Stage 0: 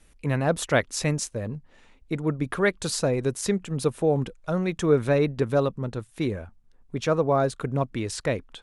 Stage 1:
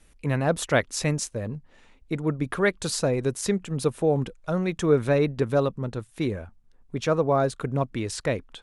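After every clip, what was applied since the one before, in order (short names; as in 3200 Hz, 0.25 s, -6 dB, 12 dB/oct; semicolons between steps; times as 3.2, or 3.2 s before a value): nothing audible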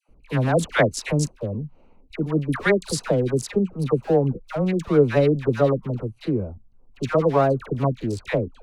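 Wiener smoothing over 25 samples; dispersion lows, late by 86 ms, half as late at 950 Hz; gain +4 dB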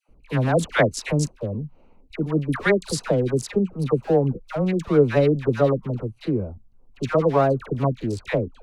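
high shelf 9700 Hz -3 dB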